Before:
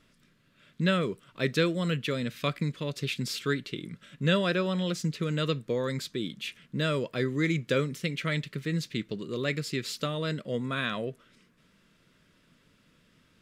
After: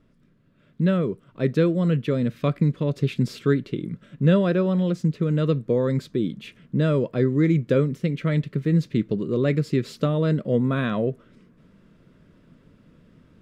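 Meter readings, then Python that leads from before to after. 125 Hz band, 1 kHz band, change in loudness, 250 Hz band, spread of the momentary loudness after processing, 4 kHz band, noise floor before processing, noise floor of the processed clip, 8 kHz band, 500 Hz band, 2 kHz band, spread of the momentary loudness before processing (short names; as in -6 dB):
+9.5 dB, +1.5 dB, +7.0 dB, +9.0 dB, 7 LU, -6.5 dB, -65 dBFS, -59 dBFS, n/a, +7.0 dB, -2.5 dB, 8 LU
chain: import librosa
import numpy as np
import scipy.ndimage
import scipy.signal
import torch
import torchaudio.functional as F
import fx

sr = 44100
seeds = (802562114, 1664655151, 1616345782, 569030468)

y = fx.tilt_shelf(x, sr, db=9.5, hz=1300.0)
y = fx.rider(y, sr, range_db=4, speed_s=2.0)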